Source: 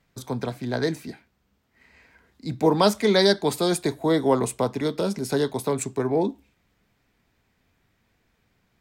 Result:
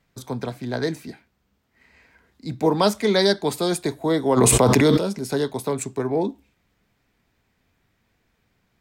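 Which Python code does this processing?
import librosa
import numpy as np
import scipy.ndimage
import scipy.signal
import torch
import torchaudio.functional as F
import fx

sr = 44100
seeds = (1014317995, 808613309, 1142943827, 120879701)

y = fx.env_flatten(x, sr, amount_pct=100, at=(4.36, 4.97), fade=0.02)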